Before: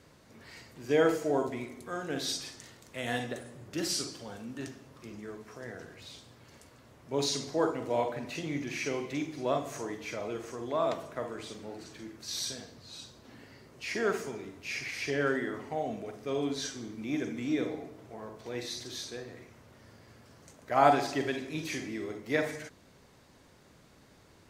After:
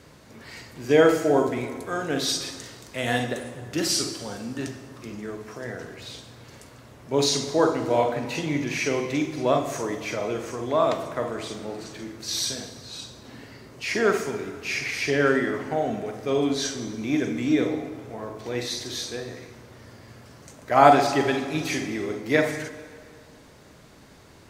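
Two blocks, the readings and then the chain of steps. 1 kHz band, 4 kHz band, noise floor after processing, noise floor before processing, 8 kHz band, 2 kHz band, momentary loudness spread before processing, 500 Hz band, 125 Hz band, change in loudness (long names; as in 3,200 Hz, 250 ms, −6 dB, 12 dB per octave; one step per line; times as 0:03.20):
+8.5 dB, +8.0 dB, −50 dBFS, −59 dBFS, +8.5 dB, +8.5 dB, 17 LU, +8.5 dB, +9.0 dB, +8.5 dB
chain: dense smooth reverb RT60 2.2 s, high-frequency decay 0.75×, DRR 10.5 dB
level +8 dB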